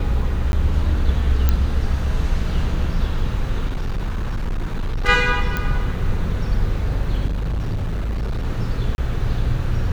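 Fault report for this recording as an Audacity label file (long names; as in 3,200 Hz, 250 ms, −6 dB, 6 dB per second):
0.520000	0.530000	drop-out 11 ms
1.490000	1.490000	click −5 dBFS
3.660000	5.090000	clipping −19 dBFS
5.570000	5.570000	click −9 dBFS
7.280000	8.460000	clipping −19.5 dBFS
8.950000	8.980000	drop-out 31 ms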